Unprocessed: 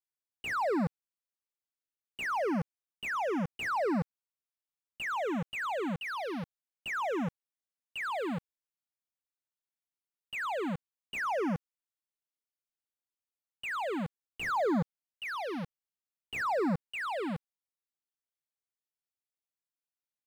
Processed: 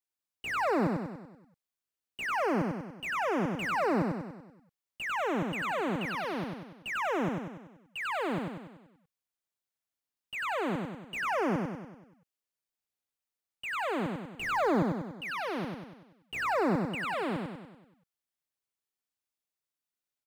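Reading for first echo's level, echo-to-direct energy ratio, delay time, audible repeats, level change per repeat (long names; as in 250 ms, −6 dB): −3.0 dB, −1.5 dB, 96 ms, 6, −5.5 dB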